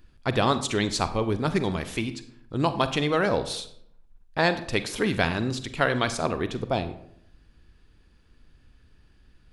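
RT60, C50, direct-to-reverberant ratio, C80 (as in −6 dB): 0.70 s, 13.0 dB, 11.0 dB, 15.5 dB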